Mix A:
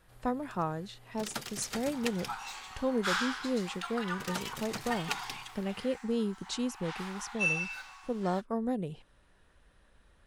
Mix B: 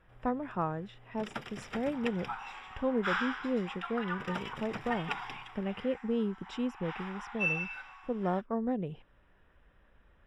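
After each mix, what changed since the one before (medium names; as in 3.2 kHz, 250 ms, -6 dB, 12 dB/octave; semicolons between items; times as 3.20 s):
master: add Savitzky-Golay filter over 25 samples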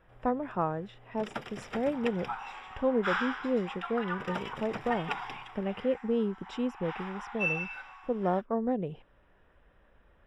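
master: add peaking EQ 570 Hz +4.5 dB 1.7 oct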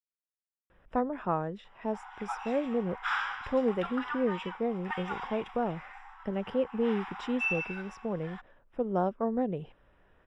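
speech: entry +0.70 s; first sound: muted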